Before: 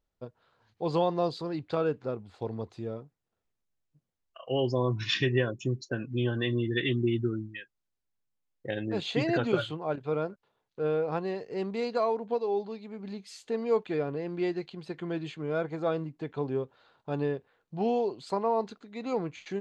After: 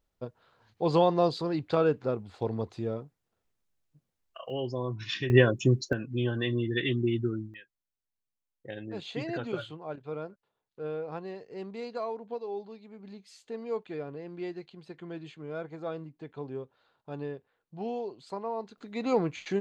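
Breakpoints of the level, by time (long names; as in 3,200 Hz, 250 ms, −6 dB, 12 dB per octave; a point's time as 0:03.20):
+3.5 dB
from 0:04.50 −5.5 dB
from 0:05.30 +7 dB
from 0:05.93 −0.5 dB
from 0:07.54 −7 dB
from 0:18.78 +4.5 dB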